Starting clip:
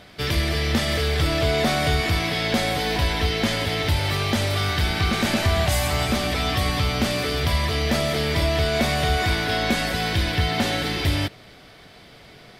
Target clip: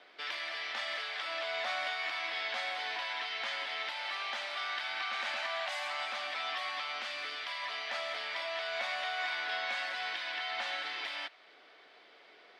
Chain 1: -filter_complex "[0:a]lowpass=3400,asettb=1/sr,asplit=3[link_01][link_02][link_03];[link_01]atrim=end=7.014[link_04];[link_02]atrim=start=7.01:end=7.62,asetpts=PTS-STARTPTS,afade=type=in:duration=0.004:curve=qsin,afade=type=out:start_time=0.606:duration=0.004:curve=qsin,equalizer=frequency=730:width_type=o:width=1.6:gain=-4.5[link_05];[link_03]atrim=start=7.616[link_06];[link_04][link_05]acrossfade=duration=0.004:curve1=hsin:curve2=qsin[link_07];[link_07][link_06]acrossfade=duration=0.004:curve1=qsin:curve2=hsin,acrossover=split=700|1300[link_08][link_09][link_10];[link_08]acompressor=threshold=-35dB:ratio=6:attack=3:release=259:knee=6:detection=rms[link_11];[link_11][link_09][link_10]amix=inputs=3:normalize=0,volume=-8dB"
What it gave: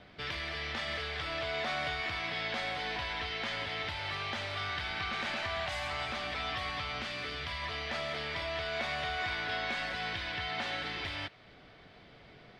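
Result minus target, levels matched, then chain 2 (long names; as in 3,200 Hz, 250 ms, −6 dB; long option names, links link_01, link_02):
500 Hz band +2.5 dB
-filter_complex "[0:a]lowpass=3400,asettb=1/sr,asplit=3[link_01][link_02][link_03];[link_01]atrim=end=7.014[link_04];[link_02]atrim=start=7.01:end=7.62,asetpts=PTS-STARTPTS,afade=type=in:duration=0.004:curve=qsin,afade=type=out:start_time=0.606:duration=0.004:curve=qsin,equalizer=frequency=730:width_type=o:width=1.6:gain=-4.5[link_05];[link_03]atrim=start=7.616[link_06];[link_04][link_05]acrossfade=duration=0.004:curve1=hsin:curve2=qsin[link_07];[link_07][link_06]acrossfade=duration=0.004:curve1=qsin:curve2=hsin,acrossover=split=700|1300[link_08][link_09][link_10];[link_08]acompressor=threshold=-35dB:ratio=6:attack=3:release=259:knee=6:detection=rms,highpass=frequency=380:width=0.5412,highpass=frequency=380:width=1.3066[link_11];[link_11][link_09][link_10]amix=inputs=3:normalize=0,volume=-8dB"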